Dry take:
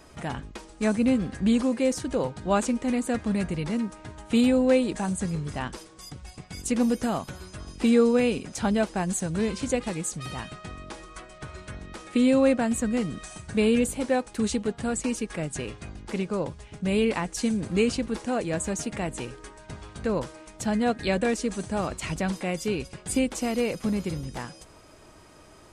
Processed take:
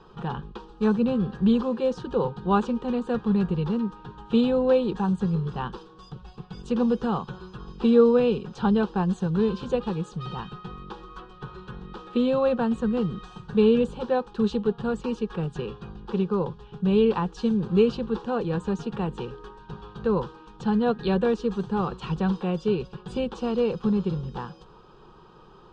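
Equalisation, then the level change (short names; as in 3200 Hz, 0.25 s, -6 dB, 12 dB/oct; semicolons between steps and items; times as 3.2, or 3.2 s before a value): Chebyshev low-pass 3400 Hz, order 3; fixed phaser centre 420 Hz, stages 8; +5.0 dB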